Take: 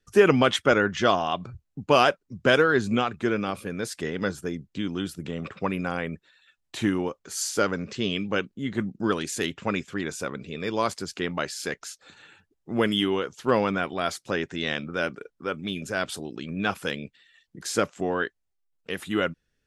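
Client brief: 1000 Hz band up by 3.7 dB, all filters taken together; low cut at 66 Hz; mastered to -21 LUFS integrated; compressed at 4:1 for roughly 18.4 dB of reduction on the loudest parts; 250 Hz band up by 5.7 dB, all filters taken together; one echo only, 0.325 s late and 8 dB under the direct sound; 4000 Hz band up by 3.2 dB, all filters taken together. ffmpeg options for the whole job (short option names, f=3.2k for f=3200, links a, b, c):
-af "highpass=66,equalizer=f=250:t=o:g=7,equalizer=f=1k:t=o:g=4.5,equalizer=f=4k:t=o:g=4,acompressor=threshold=-33dB:ratio=4,aecho=1:1:325:0.398,volume=14.5dB"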